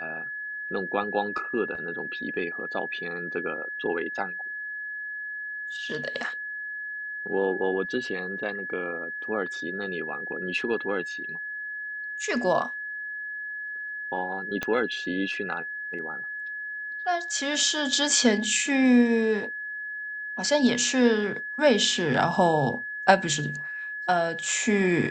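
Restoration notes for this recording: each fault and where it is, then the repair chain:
whistle 1,700 Hz −32 dBFS
0:14.63: click −14 dBFS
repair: click removal
notch filter 1,700 Hz, Q 30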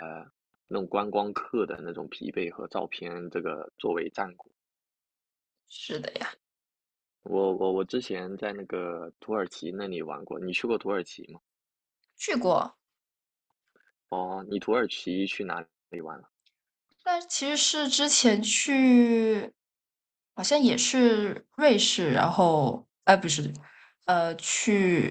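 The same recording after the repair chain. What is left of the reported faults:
0:14.63: click

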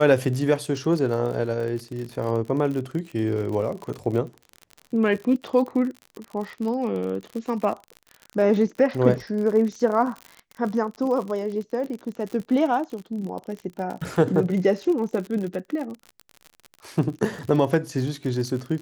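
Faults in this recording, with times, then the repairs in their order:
surface crackle 53 per second −30 dBFS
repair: click removal

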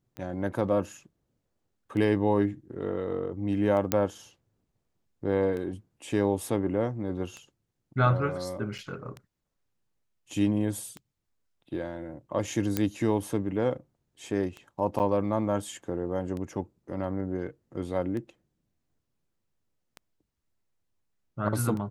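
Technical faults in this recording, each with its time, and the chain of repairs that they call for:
scratch tick 33 1/3 rpm −25 dBFS
0:03.92: click −7 dBFS
0:08.78–0:08.79: drop-out 6 ms
0:12.77: click −11 dBFS
0:14.99–0:15.00: drop-out 8.6 ms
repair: click removal
repair the gap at 0:08.78, 6 ms
repair the gap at 0:14.99, 8.6 ms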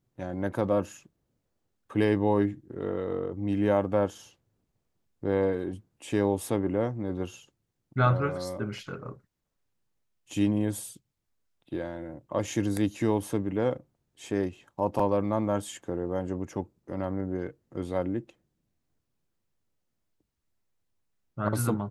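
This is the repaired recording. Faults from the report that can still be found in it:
0:12.77: click

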